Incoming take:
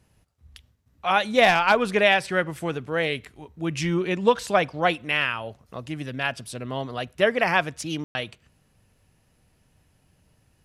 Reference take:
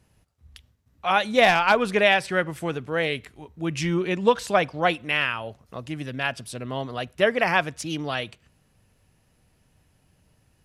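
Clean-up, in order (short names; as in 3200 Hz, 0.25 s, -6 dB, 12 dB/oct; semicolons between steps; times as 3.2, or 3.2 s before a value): room tone fill 8.04–8.15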